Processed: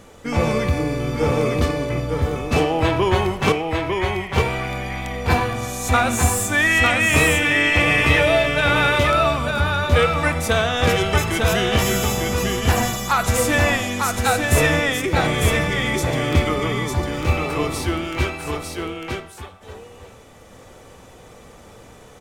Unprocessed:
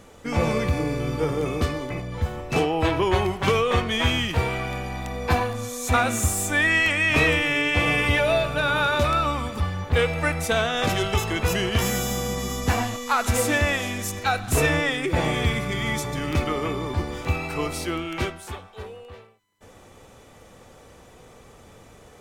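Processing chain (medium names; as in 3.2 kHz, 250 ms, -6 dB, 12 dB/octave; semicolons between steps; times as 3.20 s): 3.52–4.36 s: band-pass filter 2.1 kHz, Q 8.3; on a send: delay 901 ms -4 dB; on the sum: Schroeder reverb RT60 0.69 s, combs from 26 ms, DRR 17 dB; trim +3 dB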